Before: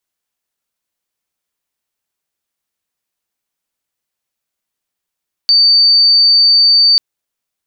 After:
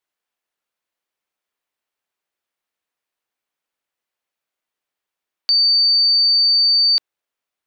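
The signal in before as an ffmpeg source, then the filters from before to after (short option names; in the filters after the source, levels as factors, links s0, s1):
-f lavfi -i "aevalsrc='0.531*sin(2*PI*4590*t)':d=1.49:s=44100"
-af "bass=f=250:g=-10,treble=f=4000:g=-9"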